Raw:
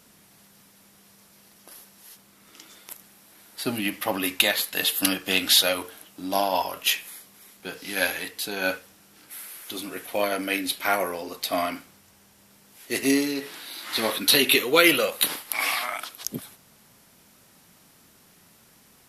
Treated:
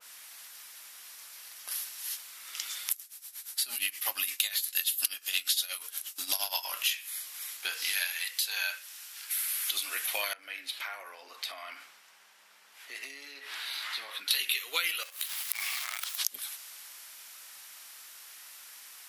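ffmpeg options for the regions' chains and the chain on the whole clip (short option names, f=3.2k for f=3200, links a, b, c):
-filter_complex "[0:a]asettb=1/sr,asplit=3[a][b][c];[a]atrim=end=2.914[d];[b]atrim=start=2.91:end=6.65,asetpts=PTS-STARTPTS,afade=t=in:d=0.004:c=qsin,afade=t=out:st=3.736:d=0.004:c=qsin,agate=range=-33dB:threshold=-49dB:ratio=3:release=100:detection=peak,bass=f=250:g=8,treble=f=4k:g=9,tremolo=f=8.5:d=0.83[e];[c]atrim=start=6.646[f];[d][e]acrossfade=d=0.004:c1=hsin:c2=qsin[g];[g][f]acrossfade=d=0.004:c1=qsin:c2=hsin,asettb=1/sr,asplit=3[h][i][j];[h]atrim=end=7.924[k];[i]atrim=start=7.92:end=9.37,asetpts=PTS-STARTPTS,afade=t=in:d=0.004:c=qsin,afade=t=out:st=1.446:d=0.004:c=qsin,afreqshift=48,highpass=f=970:p=1[l];[j]atrim=start=9.366[m];[k][l]acrossfade=d=0.004:c1=hsin:c2=qsin[n];[n][m]acrossfade=d=0.004:c1=qsin:c2=hsin,asettb=1/sr,asplit=3[o][p][q];[o]atrim=end=10.334[r];[p]atrim=start=10.33:end=14.31,asetpts=PTS-STARTPTS,afade=t=in:d=0.004:c=qsin,afade=t=out:st=3.976:d=0.004:c=qsin,lowpass=f=1.4k:p=1,acompressor=threshold=-42dB:ratio=5:attack=3.2:release=140:knee=1:detection=peak[s];[q]atrim=start=14.306[t];[r][s]acrossfade=d=0.004:c1=hsin:c2=qsin[u];[u][t]acrossfade=d=0.004:c1=qsin:c2=hsin,asettb=1/sr,asplit=3[v][w][x];[v]atrim=end=15.034[y];[w]atrim=start=15.03:end=16.17,asetpts=PTS-STARTPTS,afade=t=in:d=0.004:c=qsin,afade=t=out:st=1.136:d=0.004:c=qsin,acrusher=bits=5:dc=4:mix=0:aa=0.000001,acompressor=threshold=-36dB:ratio=6:attack=3.2:release=140:knee=1:detection=peak[z];[x]atrim=start=16.166[aa];[y][z]acrossfade=d=0.004:c1=hsin:c2=qsin[ab];[ab][aa]acrossfade=d=0.004:c1=qsin:c2=hsin,highpass=1.4k,acompressor=threshold=-41dB:ratio=6,adynamicequalizer=threshold=0.00141:dfrequency=2100:dqfactor=0.7:tfrequency=2100:tqfactor=0.7:attack=5:release=100:ratio=0.375:range=2:mode=boostabove:tftype=highshelf,volume=8.5dB"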